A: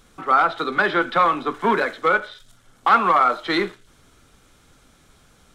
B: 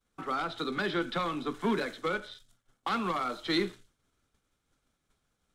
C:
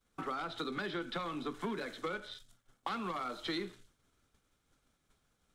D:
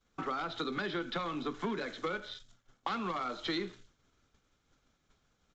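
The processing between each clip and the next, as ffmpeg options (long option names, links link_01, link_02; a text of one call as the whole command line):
ffmpeg -i in.wav -filter_complex "[0:a]acrossover=split=350|3000[link_01][link_02][link_03];[link_02]acompressor=threshold=-42dB:ratio=2[link_04];[link_01][link_04][link_03]amix=inputs=3:normalize=0,agate=range=-33dB:threshold=-41dB:ratio=3:detection=peak,volume=-3dB" out.wav
ffmpeg -i in.wav -af "acompressor=threshold=-38dB:ratio=4,volume=1.5dB" out.wav
ffmpeg -i in.wav -af "aresample=16000,aresample=44100,volume=2.5dB" out.wav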